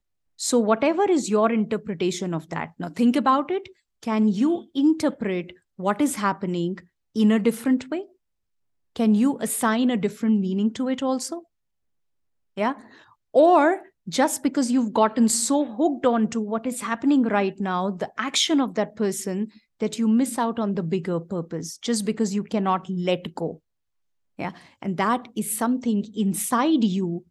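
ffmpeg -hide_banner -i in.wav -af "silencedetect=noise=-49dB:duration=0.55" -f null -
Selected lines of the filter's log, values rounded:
silence_start: 8.11
silence_end: 8.96 | silence_duration: 0.85
silence_start: 11.43
silence_end: 12.57 | silence_duration: 1.14
silence_start: 23.58
silence_end: 24.39 | silence_duration: 0.80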